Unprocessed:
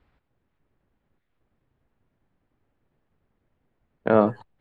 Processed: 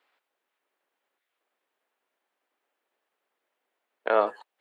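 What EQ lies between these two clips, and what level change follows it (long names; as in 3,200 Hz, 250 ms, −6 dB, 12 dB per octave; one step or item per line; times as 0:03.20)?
Bessel high-pass filter 620 Hz, order 4
parametric band 3,000 Hz +2.5 dB
high-shelf EQ 3,900 Hz +5.5 dB
0.0 dB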